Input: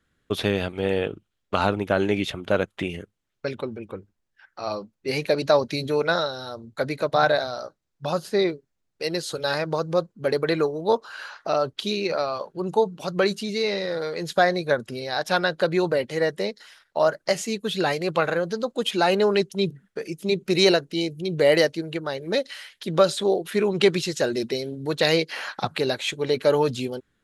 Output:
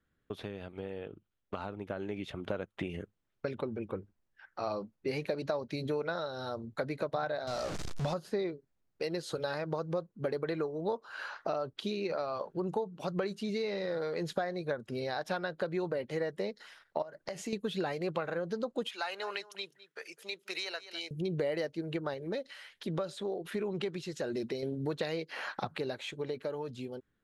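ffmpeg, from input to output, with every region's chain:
ffmpeg -i in.wav -filter_complex "[0:a]asettb=1/sr,asplit=3[link_01][link_02][link_03];[link_01]atrim=end=7.474[link_04];[link_02]atrim=start=7.47:end=8.14,asetpts=PTS-STARTPTS,afade=type=in:duration=0.004:curve=qsin,afade=type=out:start_time=0.666:duration=0.004:curve=qsin,aeval=exprs='val(0)+0.5*0.0316*sgn(val(0))':channel_layout=same,lowpass=6300,bass=frequency=250:gain=3,treble=frequency=4000:gain=12[link_05];[link_03]atrim=start=8.136[link_06];[link_04][link_05]acrossfade=duration=0.004:curve1=hsin:curve2=qsin[link_07];[link_07][link_06]acrossfade=duration=0.004:curve1=qsin:curve2=hsin,asettb=1/sr,asplit=3[link_08][link_09][link_10];[link_08]atrim=end=17.024[link_11];[link_09]atrim=start=17.02:end=17.53,asetpts=PTS-STARTPTS,afade=type=in:duration=0.004:curve=qsin,afade=type=out:start_time=0.506:duration=0.004:curve=qsin,bandreject=frequency=1300:width=14,acompressor=threshold=-31dB:ratio=16:attack=3.2:release=140:knee=1:detection=peak[link_12];[link_10]atrim=start=17.526[link_13];[link_11][link_12]acrossfade=duration=0.004:curve1=hsin:curve2=qsin[link_14];[link_14][link_13]acrossfade=duration=0.004:curve1=qsin:curve2=hsin,asettb=1/sr,asplit=3[link_15][link_16][link_17];[link_15]atrim=end=18.884[link_18];[link_16]atrim=start=18.88:end=21.11,asetpts=PTS-STARTPTS,afade=type=in:duration=0.004:curve=qsin,afade=type=out:start_time=2.226:duration=0.004:curve=qsin,highpass=1200,aecho=1:1:207:0.1,atrim=end_sample=98343[link_19];[link_17]atrim=start=21.106[link_20];[link_18][link_19]acrossfade=duration=0.004:curve1=hsin:curve2=qsin[link_21];[link_21][link_20]acrossfade=duration=0.004:curve1=qsin:curve2=hsin,asettb=1/sr,asplit=3[link_22][link_23][link_24];[link_22]atrim=end=22.144[link_25];[link_23]atrim=start=22.14:end=24.63,asetpts=PTS-STARTPTS,afade=type=in:duration=0.004:curve=qsin,afade=type=out:start_time=2.486:duration=0.004:curve=qsin,tremolo=f=1.3:d=0.52,acompressor=threshold=-38dB:ratio=1.5:attack=3.2:release=140:knee=1:detection=peak[link_26];[link_24]atrim=start=24.626[link_27];[link_25][link_26]acrossfade=duration=0.004:curve1=hsin:curve2=qsin[link_28];[link_28][link_27]acrossfade=duration=0.004:curve1=qsin:curve2=hsin,acompressor=threshold=-30dB:ratio=6,highshelf=frequency=2800:gain=-9.5,dynaudnorm=framelen=920:gausssize=5:maxgain=6.5dB,volume=-7dB" out.wav

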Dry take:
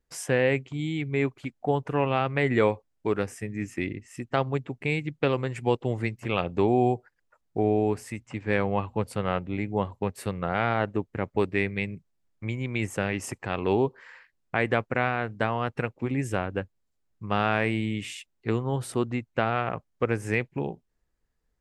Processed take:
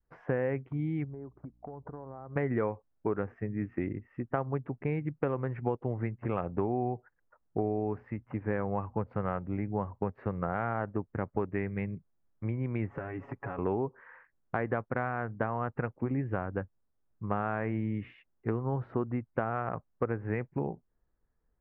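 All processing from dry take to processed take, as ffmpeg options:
ffmpeg -i in.wav -filter_complex "[0:a]asettb=1/sr,asplit=3[link_01][link_02][link_03];[link_01]atrim=end=1.044[link_04];[link_02]atrim=start=1.04:end=2.36,asetpts=PTS-STARTPTS,afade=type=in:duration=0.004:curve=qsin,afade=type=out:start_time=1.316:duration=0.004:curve=qsin,lowpass=frequency=1200:width=0.5412,lowpass=frequency=1200:width=1.3066,acompressor=threshold=-38dB:ratio=20:attack=3.2:release=140:knee=1:detection=peak,aeval=exprs='val(0)+0.000501*(sin(2*PI*60*n/s)+sin(2*PI*2*60*n/s)/2+sin(2*PI*3*60*n/s)/3+sin(2*PI*4*60*n/s)/4+sin(2*PI*5*60*n/s)/5)':channel_layout=same[link_05];[link_03]atrim=start=2.356[link_06];[link_04][link_05]acrossfade=duration=0.004:curve1=hsin:curve2=qsin[link_07];[link_07][link_06]acrossfade=duration=0.004:curve1=qsin:curve2=hsin,asettb=1/sr,asplit=3[link_08][link_09][link_10];[link_08]atrim=end=12.904[link_11];[link_09]atrim=start=12.9:end=13.59,asetpts=PTS-STARTPTS,afade=type=in:duration=0.004:curve=qsin,afade=type=out:start_time=0.686:duration=0.004:curve=qsin,aecho=1:1:7.2:1,atrim=end_sample=30429,acompressor=threshold=-32dB:ratio=6:attack=3.2:release=140:knee=1:detection=peak[link_12];[link_10]atrim=start=13.586[link_13];[link_11][link_12]acrossfade=duration=0.004:curve1=hsin:curve2=qsin[link_14];[link_14][link_13]acrossfade=duration=0.004:curve1=qsin:curve2=hsin,lowpass=frequency=1600:width=0.5412,lowpass=frequency=1600:width=1.3066,adynamicequalizer=threshold=0.0141:dfrequency=410:dqfactor=0.85:tfrequency=410:tqfactor=0.85:attack=5:release=100:ratio=0.375:range=2:mode=cutabove:tftype=bell,acompressor=threshold=-27dB:ratio=4" out.wav

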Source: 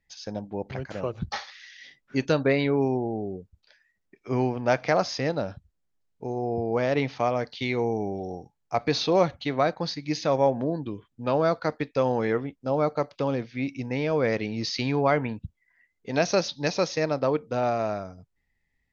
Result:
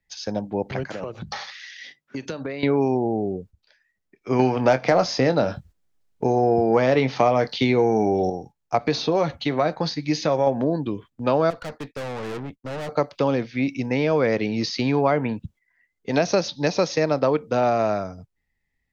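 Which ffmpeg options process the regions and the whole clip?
ffmpeg -i in.wav -filter_complex "[0:a]asettb=1/sr,asplit=3[link_01][link_02][link_03];[link_01]atrim=end=0.834[link_04];[link_02]atrim=start=0.83:end=2.63,asetpts=PTS-STARTPTS,afade=type=in:duration=0.004:curve=qsin,afade=type=out:start_time=1.796:duration=0.004:curve=qsin,highpass=frequency=130:poles=1,acompressor=threshold=-33dB:ratio=12:attack=3.2:release=140:knee=1:detection=peak,bandreject=frequency=50:width_type=h:width=6,bandreject=frequency=100:width_type=h:width=6,bandreject=frequency=150:width_type=h:width=6,bandreject=frequency=200:width_type=h:width=6[link_05];[link_03]atrim=start=2.626[link_06];[link_04][link_05]acrossfade=duration=0.004:curve1=hsin:curve2=qsin[link_07];[link_07][link_06]acrossfade=duration=0.004:curve1=qsin:curve2=hsin,asettb=1/sr,asplit=3[link_08][link_09][link_10];[link_08]atrim=end=4.394[link_11];[link_09]atrim=start=4.39:end=8.3,asetpts=PTS-STARTPTS,afade=type=in:duration=0.004:curve=qsin,afade=type=out:start_time=3.906:duration=0.004:curve=qsin,acontrast=72,asplit=2[link_12][link_13];[link_13]adelay=23,volume=-11.5dB[link_14];[link_12][link_14]amix=inputs=2:normalize=0,atrim=end_sample=172431[link_15];[link_10]atrim=start=8.296[link_16];[link_11][link_15]acrossfade=duration=0.004:curve1=hsin:curve2=qsin[link_17];[link_17][link_16]acrossfade=duration=0.004:curve1=qsin:curve2=hsin,asettb=1/sr,asplit=3[link_18][link_19][link_20];[link_18]atrim=end=8.864[link_21];[link_19]atrim=start=8.86:end=10.47,asetpts=PTS-STARTPTS,afade=type=in:duration=0.004:curve=qsin,afade=type=out:start_time=1.606:duration=0.004:curve=qsin,acompressor=threshold=-24dB:ratio=2:attack=3.2:release=140:knee=1:detection=peak,asplit=2[link_22][link_23];[link_23]adelay=13,volume=-11.5dB[link_24];[link_22][link_24]amix=inputs=2:normalize=0,atrim=end_sample=71001[link_25];[link_20]atrim=start=10.466[link_26];[link_21][link_25]acrossfade=duration=0.004:curve1=hsin:curve2=qsin[link_27];[link_27][link_26]acrossfade=duration=0.004:curve1=qsin:curve2=hsin,asettb=1/sr,asplit=3[link_28][link_29][link_30];[link_28]atrim=end=11.504[link_31];[link_29]atrim=start=11.5:end=12.89,asetpts=PTS-STARTPTS,afade=type=in:duration=0.004:curve=qsin,afade=type=out:start_time=1.386:duration=0.004:curve=qsin,agate=range=-33dB:threshold=-46dB:ratio=3:release=100:detection=peak,asubboost=boost=3.5:cutoff=240,aeval=exprs='(tanh(63.1*val(0)+0.6)-tanh(0.6))/63.1':channel_layout=same[link_32];[link_30]atrim=start=12.886[link_33];[link_31][link_32]acrossfade=duration=0.004:curve1=hsin:curve2=qsin[link_34];[link_34][link_33]acrossfade=duration=0.004:curve1=qsin:curve2=hsin,agate=range=-8dB:threshold=-49dB:ratio=16:detection=peak,acrossover=split=130|970[link_35][link_36][link_37];[link_35]acompressor=threshold=-48dB:ratio=4[link_38];[link_36]acompressor=threshold=-24dB:ratio=4[link_39];[link_37]acompressor=threshold=-35dB:ratio=4[link_40];[link_38][link_39][link_40]amix=inputs=3:normalize=0,volume=7dB" out.wav

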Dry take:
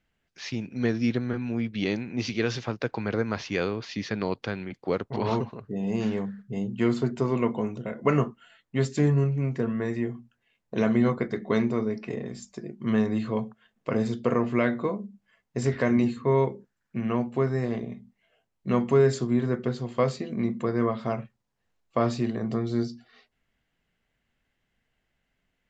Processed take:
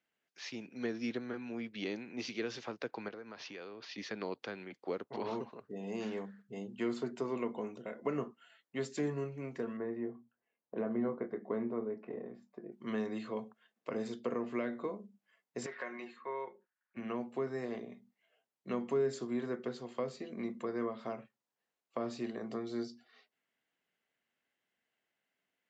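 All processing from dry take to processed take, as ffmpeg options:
ffmpeg -i in.wav -filter_complex "[0:a]asettb=1/sr,asplit=3[link_01][link_02][link_03];[link_01]atrim=end=3.084[link_04];[link_02]atrim=start=3.08:end=3.98,asetpts=PTS-STARTPTS,afade=type=in:duration=0.004:curve=qsin,afade=type=out:start_time=0.896:duration=0.004:curve=qsin,lowpass=frequency=6000:width=0.5412,lowpass=frequency=6000:width=1.3066,bandreject=frequency=2100:width=27,acompressor=threshold=-33dB:ratio=8:attack=3.2:release=140:knee=1:detection=peak[link_05];[link_03]atrim=start=3.976[link_06];[link_04][link_05]acrossfade=duration=0.004:curve1=hsin:curve2=qsin[link_07];[link_07][link_06]acrossfade=duration=0.004:curve1=qsin:curve2=hsin,asettb=1/sr,asplit=3[link_08][link_09][link_10];[link_08]atrim=end=9.774[link_11];[link_09]atrim=start=9.77:end=12.72,asetpts=PTS-STARTPTS,afade=type=in:duration=0.004:curve=qsin,afade=type=out:start_time=2.946:duration=0.004:curve=qsin,lowpass=1200,asplit=2[link_12][link_13];[link_13]adelay=26,volume=-12.5dB[link_14];[link_12][link_14]amix=inputs=2:normalize=0,atrim=end_sample=130095[link_15];[link_10]atrim=start=12.716[link_16];[link_11][link_15]acrossfade=duration=0.004:curve1=hsin:curve2=qsin[link_17];[link_17][link_16]acrossfade=duration=0.004:curve1=qsin:curve2=hsin,asettb=1/sr,asplit=3[link_18][link_19][link_20];[link_18]atrim=end=15.664[link_21];[link_19]atrim=start=15.66:end=16.97,asetpts=PTS-STARTPTS,afade=type=in:duration=0.004:curve=qsin,afade=type=out:start_time=1.306:duration=0.004:curve=qsin,bandpass=frequency=1500:width_type=q:width=1,aecho=1:1:5.5:0.49,atrim=end_sample=57771[link_22];[link_20]atrim=start=16.966[link_23];[link_21][link_22]acrossfade=duration=0.004:curve1=hsin:curve2=qsin[link_24];[link_24][link_23]acrossfade=duration=0.004:curve1=qsin:curve2=hsin,highpass=300,acrossover=split=420[link_25][link_26];[link_26]acompressor=threshold=-32dB:ratio=6[link_27];[link_25][link_27]amix=inputs=2:normalize=0,volume=-7dB" out.wav

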